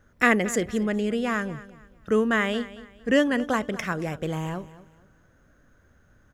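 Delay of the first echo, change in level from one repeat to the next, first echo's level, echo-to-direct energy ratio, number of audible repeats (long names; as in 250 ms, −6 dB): 227 ms, −10.0 dB, −17.0 dB, −16.5 dB, 2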